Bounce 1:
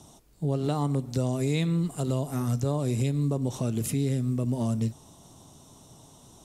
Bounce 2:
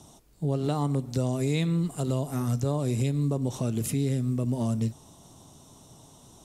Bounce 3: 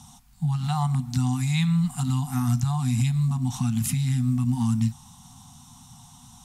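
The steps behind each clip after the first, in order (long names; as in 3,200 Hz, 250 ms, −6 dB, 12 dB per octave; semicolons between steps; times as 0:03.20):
no processing that can be heard
brick-wall band-stop 260–700 Hz; level +4.5 dB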